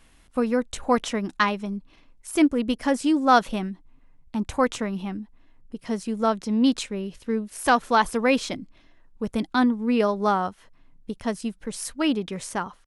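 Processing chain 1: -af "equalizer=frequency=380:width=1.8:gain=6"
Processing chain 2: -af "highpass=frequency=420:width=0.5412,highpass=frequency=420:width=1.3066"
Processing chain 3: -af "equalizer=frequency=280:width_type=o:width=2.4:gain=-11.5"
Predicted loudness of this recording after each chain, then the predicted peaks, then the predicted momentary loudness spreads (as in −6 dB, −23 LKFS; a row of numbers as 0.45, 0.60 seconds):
−23.0, −27.0, −30.0 LKFS; −5.5, −5.5, −7.5 dBFS; 14, 17, 17 LU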